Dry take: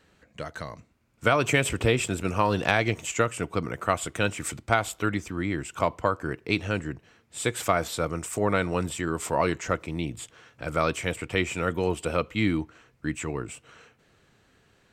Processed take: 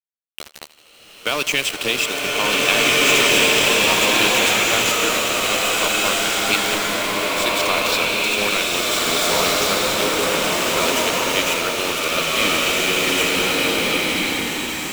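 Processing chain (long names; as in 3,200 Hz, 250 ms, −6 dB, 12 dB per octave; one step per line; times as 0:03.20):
Bessel high-pass filter 220 Hz, order 8
flat-topped bell 4,000 Hz +13 dB
in parallel at +2.5 dB: brickwall limiter −16.5 dBFS, peak gain reduction 16.5 dB
on the sum: centre clipping without the shift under −17.5 dBFS
on a send: feedback echo with a high-pass in the loop 80 ms, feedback 82%, level −18 dB
on the sum: slow-attack reverb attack 1,800 ms, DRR −8 dB
level −5 dB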